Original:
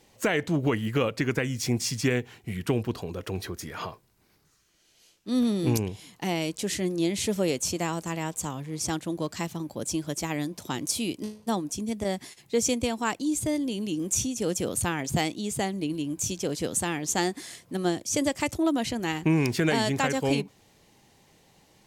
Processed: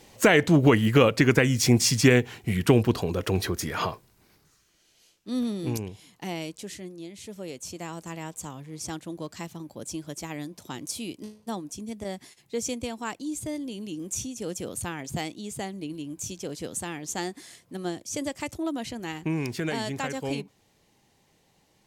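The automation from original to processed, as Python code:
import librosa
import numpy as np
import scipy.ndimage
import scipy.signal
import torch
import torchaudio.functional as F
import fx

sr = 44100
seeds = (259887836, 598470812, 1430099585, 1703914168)

y = fx.gain(x, sr, db=fx.line((3.89, 7.0), (5.58, -5.0), (6.41, -5.0), (7.1, -15.5), (8.08, -5.5)))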